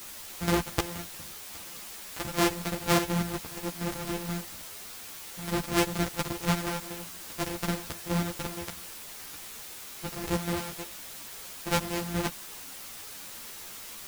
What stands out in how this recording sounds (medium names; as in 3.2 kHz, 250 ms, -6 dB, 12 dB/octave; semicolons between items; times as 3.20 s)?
a buzz of ramps at a fixed pitch in blocks of 256 samples; chopped level 4.2 Hz, depth 60%, duty 50%; a quantiser's noise floor 8-bit, dither triangular; a shimmering, thickened sound